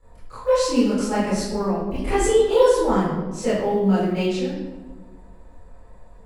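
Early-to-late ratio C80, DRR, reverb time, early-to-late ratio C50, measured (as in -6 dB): 3.0 dB, -12.5 dB, 1.3 s, 0.0 dB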